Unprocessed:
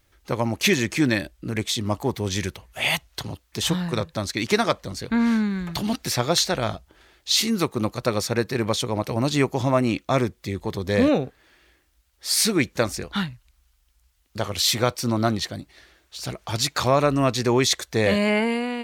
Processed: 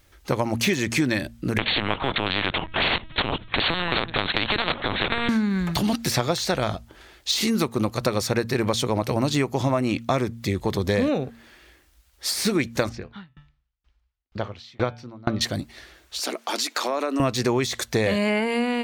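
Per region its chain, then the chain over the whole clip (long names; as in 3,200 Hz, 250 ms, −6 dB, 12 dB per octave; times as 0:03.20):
0:01.58–0:05.29: low-shelf EQ 270 Hz +2.5 dB + linear-prediction vocoder at 8 kHz pitch kept + every bin compressed towards the loudest bin 4 to 1
0:12.89–0:15.41: high-frequency loss of the air 220 metres + hum removal 146 Hz, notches 25 + tremolo with a ramp in dB decaying 2.1 Hz, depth 33 dB
0:16.19–0:17.20: Butterworth high-pass 240 Hz 48 dB per octave + downward compressor 4 to 1, threshold −28 dBFS
whole clip: de-essing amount 50%; hum removal 115.6 Hz, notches 2; downward compressor, threshold −25 dBFS; level +6 dB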